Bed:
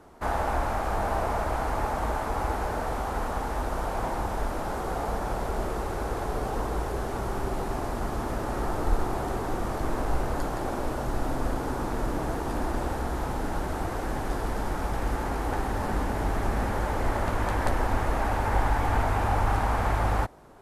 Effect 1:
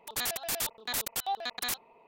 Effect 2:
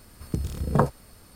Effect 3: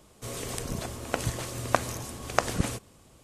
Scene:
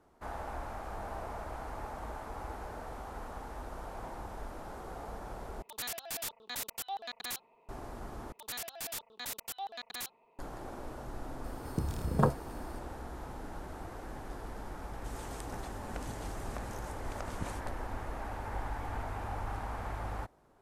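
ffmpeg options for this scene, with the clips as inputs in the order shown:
-filter_complex "[1:a]asplit=2[a][b];[0:a]volume=-13.5dB[c];[3:a]alimiter=limit=-12dB:level=0:latency=1:release=226[d];[c]asplit=3[e][f][g];[e]atrim=end=5.624[h];[a]atrim=end=2.07,asetpts=PTS-STARTPTS,volume=-6.5dB[i];[f]atrim=start=7.686:end=8.324[j];[b]atrim=end=2.07,asetpts=PTS-STARTPTS,volume=-8dB[k];[g]atrim=start=10.386[l];[2:a]atrim=end=1.35,asetpts=PTS-STARTPTS,volume=-5.5dB,afade=t=in:d=0.004:c=hsin,afade=t=out:st=1.346:d=0.004:c=hsin,adelay=11440[m];[d]atrim=end=3.23,asetpts=PTS-STARTPTS,volume=-13.5dB,afade=t=in:d=0.004:c=hsin,afade=t=out:st=3.226:d=0.004:c=hsin,adelay=14820[n];[h][i]acrossfade=d=0.004:c1=hsin:c2=hsin[o];[o][j]acrossfade=d=0.004:c1=hsin:c2=hsin[p];[p][k]acrossfade=d=0.004:c1=hsin:c2=hsin[q];[q][l]acrossfade=d=0.004:c1=hsin:c2=hsin[r];[r][m][n]amix=inputs=3:normalize=0"

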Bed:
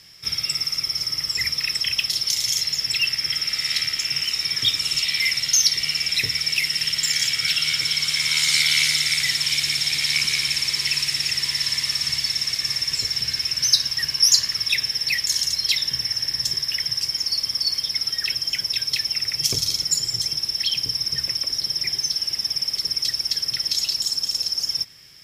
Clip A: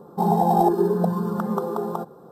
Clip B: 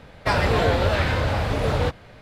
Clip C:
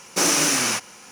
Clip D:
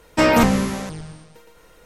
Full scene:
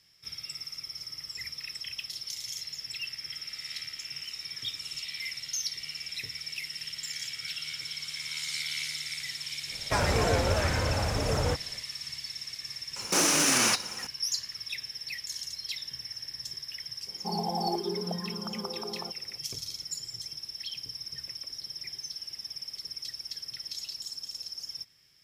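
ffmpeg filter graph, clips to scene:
-filter_complex "[0:a]volume=-15.5dB[a];[2:a]highshelf=f=5.2k:t=q:w=3:g=7[b];[3:a]alimiter=level_in=16.5dB:limit=-1dB:release=50:level=0:latency=1[c];[b]atrim=end=2.21,asetpts=PTS-STARTPTS,volume=-6dB,afade=t=in:d=0.1,afade=t=out:st=2.11:d=0.1,adelay=9650[d];[c]atrim=end=1.11,asetpts=PTS-STARTPTS,volume=-13.5dB,afade=t=in:d=0.004:c=hsin,afade=t=out:st=1.106:d=0.004:c=hsin,adelay=12960[e];[1:a]atrim=end=2.31,asetpts=PTS-STARTPTS,volume=-13dB,afade=t=in:d=0.004:c=hsin,afade=t=out:st=2.306:d=0.004:c=hsin,adelay=17070[f];[a][d][e][f]amix=inputs=4:normalize=0"

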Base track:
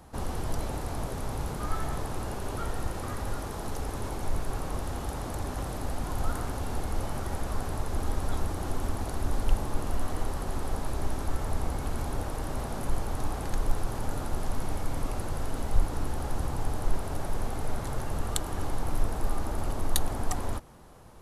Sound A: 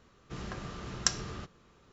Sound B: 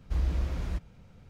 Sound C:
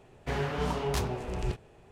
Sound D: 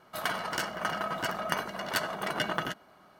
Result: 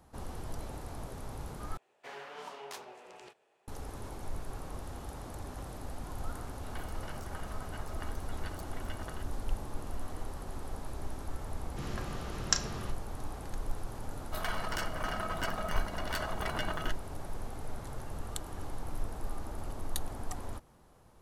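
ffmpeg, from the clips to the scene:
-filter_complex "[4:a]asplit=2[a][b];[0:a]volume=-9dB[c];[3:a]highpass=550[d];[a]acrossover=split=4900[e][f];[f]adelay=130[g];[e][g]amix=inputs=2:normalize=0[h];[1:a]asplit=2[i][j];[j]adelay=35,volume=-11.5dB[k];[i][k]amix=inputs=2:normalize=0[l];[b]alimiter=limit=-20dB:level=0:latency=1:release=37[m];[c]asplit=2[n][o];[n]atrim=end=1.774[p];[d]atrim=end=1.91,asetpts=PTS-STARTPTS,volume=-10dB[q];[o]atrim=start=3.676[r];[h]atrim=end=3.19,asetpts=PTS-STARTPTS,volume=-16.5dB,afade=t=in:d=0.004:c=hsin,afade=t=out:st=3.186:d=0.004:c=hsin,adelay=286650S[s];[l]atrim=end=1.92,asetpts=PTS-STARTPTS,volume=-0.5dB,afade=t=in:d=0.004:c=hsin,afade=t=out:st=1.916:d=0.004:c=hsin,adelay=505386S[t];[m]atrim=end=3.19,asetpts=PTS-STARTPTS,volume=-3.5dB,afade=t=in:d=0.004:c=hsin,afade=t=out:st=3.186:d=0.004:c=hsin,adelay=14190[u];[p][q]acrossfade=d=0.004:c1=hsin:c2=hsin[v];[v][r]acrossfade=d=0.004:c1=hsin:c2=hsin[w];[w][s][t][u]amix=inputs=4:normalize=0"

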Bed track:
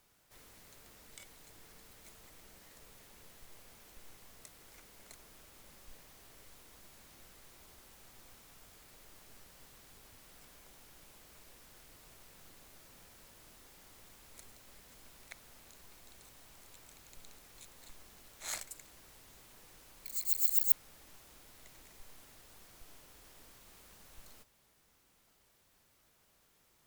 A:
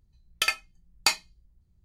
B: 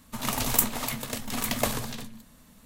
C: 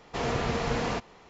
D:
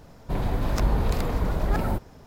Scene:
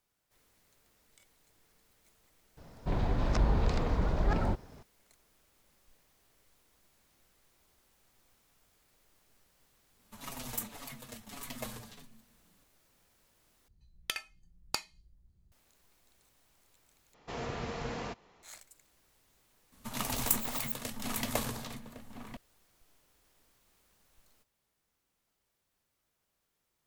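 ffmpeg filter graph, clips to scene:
-filter_complex "[2:a]asplit=2[a][b];[0:a]volume=-11dB[c];[4:a]lowpass=f=6.8k:w=0.5412,lowpass=f=6.8k:w=1.3066[d];[a]asplit=2[e][f];[f]adelay=6.2,afreqshift=-1.7[g];[e][g]amix=inputs=2:normalize=1[h];[1:a]acompressor=threshold=-33dB:ratio=16:attack=15:release=404:knee=1:detection=peak[i];[b]asplit=2[j][k];[k]adelay=1108,volume=-7dB,highshelf=f=4k:g=-24.9[l];[j][l]amix=inputs=2:normalize=0[m];[c]asplit=3[n][o][p];[n]atrim=end=13.684[q];[i]atrim=end=1.84,asetpts=PTS-STARTPTS,volume=-2dB[r];[o]atrim=start=15.516:end=17.144[s];[3:a]atrim=end=1.29,asetpts=PTS-STARTPTS,volume=-9.5dB[t];[p]atrim=start=18.426[u];[d]atrim=end=2.26,asetpts=PTS-STARTPTS,volume=-4.5dB,afade=t=in:d=0.004:c=hsin,afade=t=out:st=2.256:d=0.004:c=hsin,adelay=2570[v];[h]atrim=end=2.65,asetpts=PTS-STARTPTS,volume=-11.5dB,afade=t=in:d=0.004:c=hsin,afade=t=out:st=2.646:d=0.004:c=hsin,adelay=9990[w];[m]atrim=end=2.65,asetpts=PTS-STARTPTS,volume=-6.5dB,afade=t=in:d=0.004:c=hsin,afade=t=out:st=2.646:d=0.004:c=hsin,adelay=869652S[x];[q][r]acrossfade=d=0.004:c1=hsin:c2=hsin[y];[y][s]acrossfade=d=0.004:c1=hsin:c2=hsin[z];[z][t]acrossfade=d=0.004:c1=hsin:c2=hsin[aa];[aa][u]acrossfade=d=0.004:c1=hsin:c2=hsin[ab];[ab][v][w][x]amix=inputs=4:normalize=0"

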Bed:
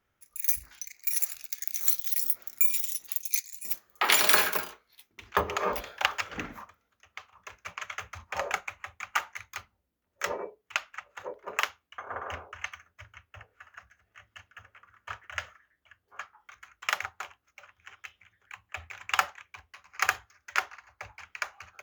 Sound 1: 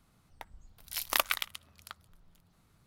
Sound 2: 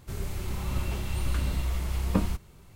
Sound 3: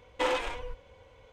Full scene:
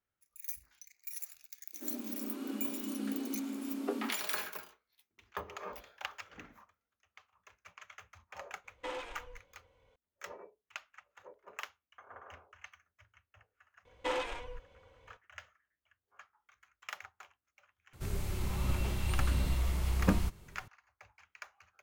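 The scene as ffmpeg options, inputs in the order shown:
-filter_complex "[2:a]asplit=2[a][b];[3:a]asplit=2[c][d];[0:a]volume=-15dB[e];[a]afreqshift=210,atrim=end=2.75,asetpts=PTS-STARTPTS,volume=-11dB,afade=t=in:d=0.004:c=hsin,afade=t=out:st=2.746:d=0.004:c=hsin,adelay=1730[f];[c]atrim=end=1.32,asetpts=PTS-STARTPTS,volume=-12.5dB,afade=t=in:d=0.004:c=hsin,afade=t=out:st=1.316:d=0.004:c=hsin,adelay=8640[g];[d]atrim=end=1.32,asetpts=PTS-STARTPTS,volume=-6dB,afade=t=in:d=0.004:c=hsin,afade=t=out:st=1.316:d=0.004:c=hsin,adelay=13850[h];[b]atrim=end=2.75,asetpts=PTS-STARTPTS,volume=-2.5dB,afade=t=in:d=0.004:c=hsin,afade=t=out:st=2.746:d=0.004:c=hsin,adelay=17930[i];[e][f][g][h][i]amix=inputs=5:normalize=0"

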